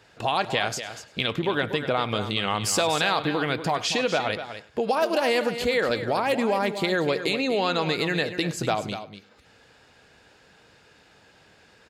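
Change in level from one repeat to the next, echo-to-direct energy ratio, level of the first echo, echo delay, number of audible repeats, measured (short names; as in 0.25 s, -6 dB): no steady repeat, -10.0 dB, -19.0 dB, 0.101 s, 3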